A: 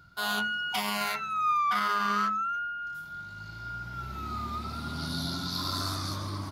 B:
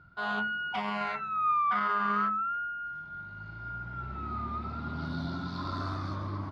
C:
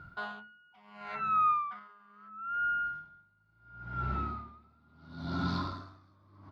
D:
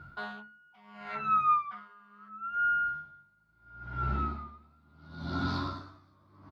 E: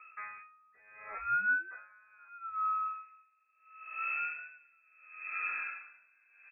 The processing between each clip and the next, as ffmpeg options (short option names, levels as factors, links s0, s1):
-af "lowpass=1900"
-filter_complex "[0:a]asplit=2[s0][s1];[s1]alimiter=level_in=2.24:limit=0.0631:level=0:latency=1:release=26,volume=0.447,volume=1.06[s2];[s0][s2]amix=inputs=2:normalize=0,aeval=exprs='val(0)*pow(10,-34*(0.5-0.5*cos(2*PI*0.73*n/s))/20)':c=same"
-filter_complex "[0:a]asplit=2[s0][s1];[s1]adelay=14,volume=0.631[s2];[s0][s2]amix=inputs=2:normalize=0"
-af "bandreject=f=167.2:t=h:w=4,bandreject=f=334.4:t=h:w=4,bandreject=f=501.6:t=h:w=4,bandreject=f=668.8:t=h:w=4,bandreject=f=836:t=h:w=4,bandreject=f=1003.2:t=h:w=4,bandreject=f=1170.4:t=h:w=4,bandreject=f=1337.6:t=h:w=4,lowpass=f=2300:t=q:w=0.5098,lowpass=f=2300:t=q:w=0.6013,lowpass=f=2300:t=q:w=0.9,lowpass=f=2300:t=q:w=2.563,afreqshift=-2700,volume=0.596"